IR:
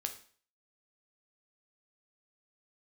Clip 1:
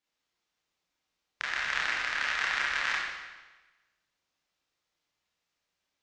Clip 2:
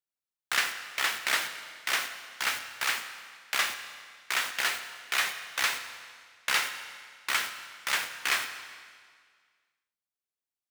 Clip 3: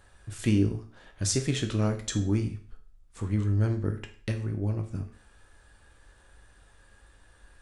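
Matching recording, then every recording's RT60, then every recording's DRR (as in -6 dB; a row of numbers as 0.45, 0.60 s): 3; 1.2, 1.9, 0.45 s; -6.5, 8.5, 5.0 dB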